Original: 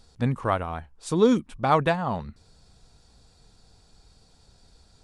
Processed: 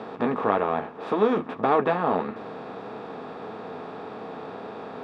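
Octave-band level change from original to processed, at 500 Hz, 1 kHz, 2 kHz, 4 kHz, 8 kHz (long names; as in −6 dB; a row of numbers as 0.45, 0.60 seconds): +2.0 dB, +2.0 dB, +0.5 dB, −4.5 dB, below −20 dB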